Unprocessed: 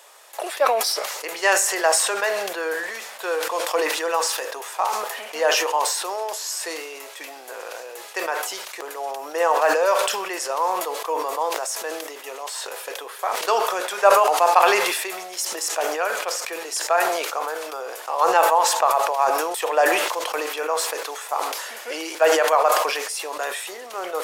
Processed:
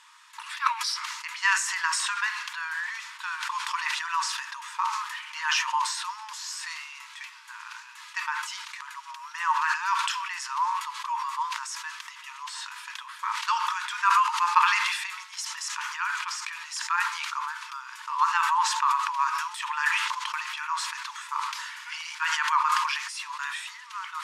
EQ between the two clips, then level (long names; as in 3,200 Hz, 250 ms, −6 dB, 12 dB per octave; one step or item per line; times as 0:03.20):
linear-phase brick-wall high-pass 880 Hz
high-frequency loss of the air 80 metres
−1.5 dB